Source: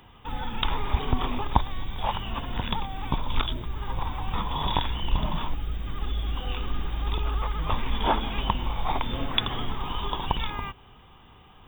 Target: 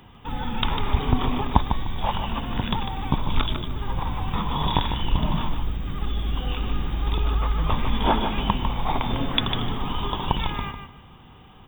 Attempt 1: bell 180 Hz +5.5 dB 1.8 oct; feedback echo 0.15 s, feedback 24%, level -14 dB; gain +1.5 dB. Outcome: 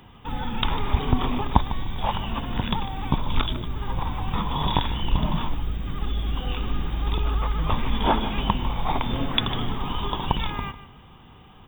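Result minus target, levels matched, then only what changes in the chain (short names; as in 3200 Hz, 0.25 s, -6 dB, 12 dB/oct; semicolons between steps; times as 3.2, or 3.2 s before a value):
echo-to-direct -6.5 dB
change: feedback echo 0.15 s, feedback 24%, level -7.5 dB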